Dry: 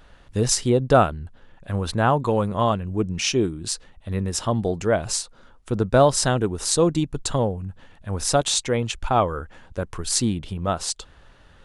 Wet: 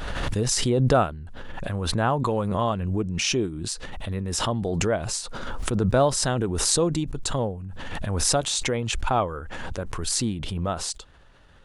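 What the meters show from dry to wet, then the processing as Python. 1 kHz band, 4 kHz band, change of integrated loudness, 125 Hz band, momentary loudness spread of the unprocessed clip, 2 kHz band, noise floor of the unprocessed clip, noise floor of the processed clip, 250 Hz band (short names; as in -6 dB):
-3.5 dB, -0.5 dB, -2.5 dB, -1.5 dB, 14 LU, -1.0 dB, -52 dBFS, -51 dBFS, -2.5 dB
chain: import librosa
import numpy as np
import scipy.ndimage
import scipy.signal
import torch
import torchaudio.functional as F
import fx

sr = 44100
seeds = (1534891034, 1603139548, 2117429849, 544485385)

y = fx.pre_swell(x, sr, db_per_s=24.0)
y = y * librosa.db_to_amplitude(-4.5)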